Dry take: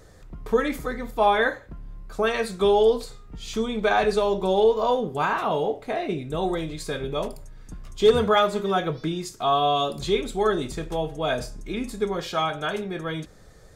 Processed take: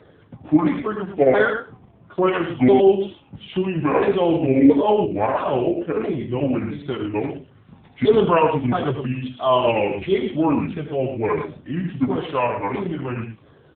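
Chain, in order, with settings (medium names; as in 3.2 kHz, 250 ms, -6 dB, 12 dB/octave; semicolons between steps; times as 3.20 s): sawtooth pitch modulation -8.5 st, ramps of 671 ms; loudspeakers at several distances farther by 26 m -11 dB, 38 m -8 dB; trim +5.5 dB; AMR-NB 6.7 kbps 8 kHz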